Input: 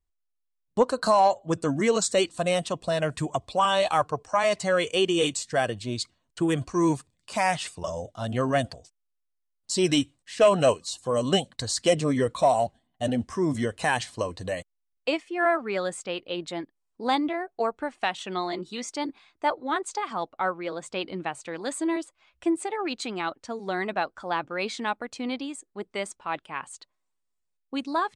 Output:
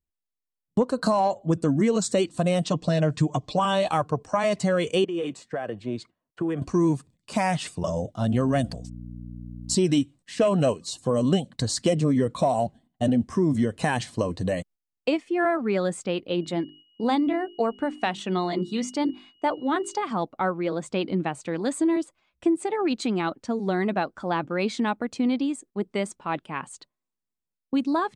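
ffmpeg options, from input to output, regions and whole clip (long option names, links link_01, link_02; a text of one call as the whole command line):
ffmpeg -i in.wav -filter_complex "[0:a]asettb=1/sr,asplit=3[link_01][link_02][link_03];[link_01]atrim=end=2.644[link_04];[link_02]atrim=start=2.64:end=3.59,asetpts=PTS-STARTPTS,afade=type=in:duration=0.004:curve=qsin,afade=type=out:start_time=0.946:duration=0.004:curve=qsin,lowpass=frequency=6800:width=0.5412,lowpass=frequency=6800:width=1.3066,bass=frequency=250:gain=-1,treble=frequency=4000:gain=6,aecho=1:1:6.6:0.64,atrim=end_sample=41895[link_05];[link_03]atrim=start=3.586[link_06];[link_04][link_05]acrossfade=duration=0.004:curve1=hsin:curve2=qsin[link_07];[link_07][link_06]acrossfade=duration=0.004:curve1=qsin:curve2=hsin,asettb=1/sr,asplit=3[link_08][link_09][link_10];[link_08]atrim=end=5.044[link_11];[link_09]atrim=start=5.04:end=6.62,asetpts=PTS-STARTPTS,afade=type=in:duration=0.004:curve=qsin,afade=type=out:start_time=1.576:duration=0.004:curve=qsin,acrossover=split=350 2400:gain=0.251 1 0.141[link_12][link_13][link_14];[link_12][link_13][link_14]amix=inputs=3:normalize=0,acompressor=threshold=-31dB:ratio=4:attack=3.2:release=140:knee=1:detection=peak[link_15];[link_10]atrim=start=6.616[link_16];[link_11][link_15]acrossfade=duration=0.004:curve1=hsin:curve2=qsin[link_17];[link_17][link_16]acrossfade=duration=0.004:curve1=qsin:curve2=hsin,asettb=1/sr,asplit=3[link_18][link_19][link_20];[link_18]atrim=end=8.334[link_21];[link_19]atrim=start=8.33:end=9.75,asetpts=PTS-STARTPTS,afade=type=in:duration=0.004:curve=qsin,afade=type=out:start_time=1.416:duration=0.004:curve=qsin,highshelf=frequency=6600:gain=7,aeval=exprs='val(0)+0.00631*(sin(2*PI*60*n/s)+sin(2*PI*2*60*n/s)/2+sin(2*PI*3*60*n/s)/3+sin(2*PI*4*60*n/s)/4+sin(2*PI*5*60*n/s)/5)':channel_layout=same[link_22];[link_20]atrim=start=9.746[link_23];[link_21][link_22]acrossfade=duration=0.004:curve1=hsin:curve2=qsin[link_24];[link_24][link_23]acrossfade=duration=0.004:curve1=qsin:curve2=hsin,asettb=1/sr,asplit=3[link_25][link_26][link_27];[link_25]atrim=end=16.414[link_28];[link_26]atrim=start=16.41:end=19.99,asetpts=PTS-STARTPTS,afade=type=in:duration=0.004:curve=qsin,afade=type=out:start_time=3.576:duration=0.004:curve=qsin,bandreject=frequency=50:width_type=h:width=6,bandreject=frequency=100:width_type=h:width=6,bandreject=frequency=150:width_type=h:width=6,bandreject=frequency=200:width_type=h:width=6,bandreject=frequency=250:width_type=h:width=6,bandreject=frequency=300:width_type=h:width=6,bandreject=frequency=350:width_type=h:width=6,bandreject=frequency=400:width_type=h:width=6,aeval=exprs='val(0)+0.00251*sin(2*PI*2900*n/s)':channel_layout=same[link_29];[link_27]atrim=start=19.986[link_30];[link_28][link_29]acrossfade=duration=0.004:curve1=hsin:curve2=qsin[link_31];[link_31][link_30]acrossfade=duration=0.004:curve1=qsin:curve2=hsin,agate=range=-9dB:threshold=-52dB:ratio=16:detection=peak,equalizer=frequency=190:width=0.56:gain=12,acompressor=threshold=-20dB:ratio=3" out.wav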